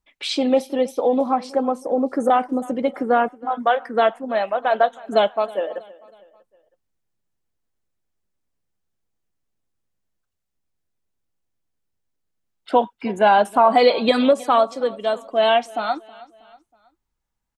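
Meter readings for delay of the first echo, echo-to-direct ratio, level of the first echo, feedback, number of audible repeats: 0.32 s, -20.5 dB, -21.5 dB, 46%, 3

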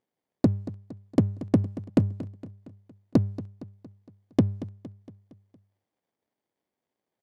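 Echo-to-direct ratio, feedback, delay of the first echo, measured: -14.5 dB, 53%, 0.231 s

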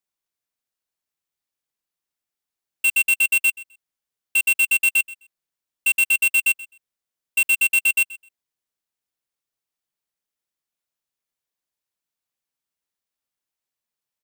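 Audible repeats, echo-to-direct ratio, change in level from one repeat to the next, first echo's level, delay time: 2, -19.5 dB, -15.5 dB, -19.5 dB, 0.129 s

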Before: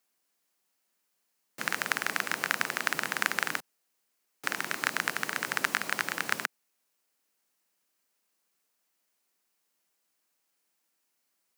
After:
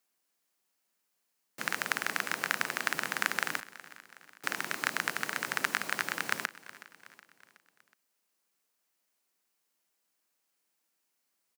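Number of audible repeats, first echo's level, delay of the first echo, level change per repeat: 3, -18.0 dB, 0.37 s, -5.5 dB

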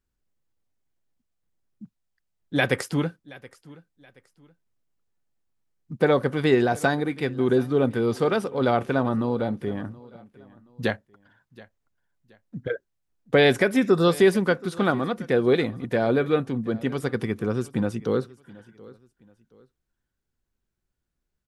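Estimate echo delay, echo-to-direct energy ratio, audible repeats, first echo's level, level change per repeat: 0.725 s, -21.0 dB, 2, -21.5 dB, -10.0 dB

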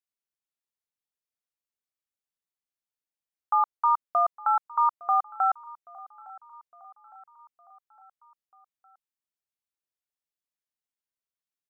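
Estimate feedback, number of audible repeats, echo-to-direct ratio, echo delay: 55%, 3, -19.5 dB, 0.86 s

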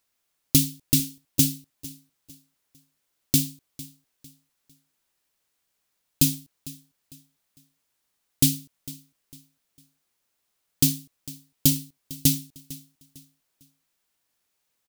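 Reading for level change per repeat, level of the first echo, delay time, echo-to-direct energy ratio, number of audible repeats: -9.5 dB, -19.0 dB, 0.452 s, -18.5 dB, 2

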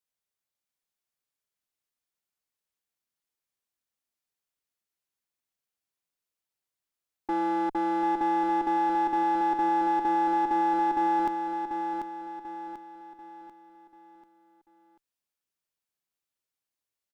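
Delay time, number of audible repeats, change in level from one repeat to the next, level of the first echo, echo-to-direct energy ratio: 0.74 s, 4, -7.5 dB, -6.0 dB, -5.0 dB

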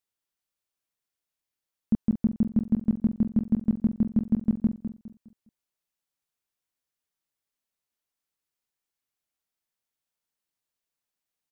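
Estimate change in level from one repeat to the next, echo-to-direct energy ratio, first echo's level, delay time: -9.5 dB, -9.0 dB, -9.5 dB, 0.205 s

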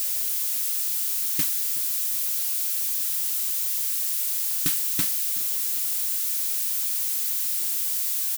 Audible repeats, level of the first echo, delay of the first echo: 3, -17.5 dB, 0.374 s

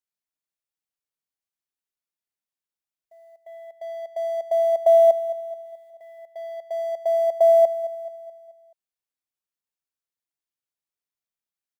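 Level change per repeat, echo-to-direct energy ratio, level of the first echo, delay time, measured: -6.0 dB, -13.0 dB, -14.0 dB, 0.215 s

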